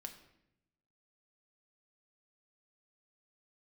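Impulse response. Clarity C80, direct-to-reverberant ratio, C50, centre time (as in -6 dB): 12.5 dB, 4.5 dB, 10.0 dB, 14 ms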